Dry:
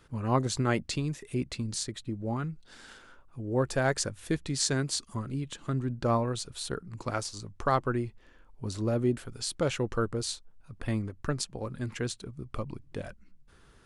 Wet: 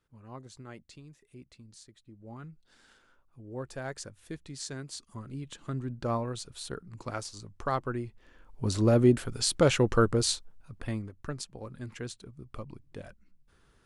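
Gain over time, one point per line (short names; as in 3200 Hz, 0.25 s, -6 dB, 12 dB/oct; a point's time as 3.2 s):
2.03 s -19 dB
2.44 s -11 dB
4.86 s -11 dB
5.53 s -4 dB
8.06 s -4 dB
8.69 s +6 dB
10.32 s +6 dB
11.1 s -6 dB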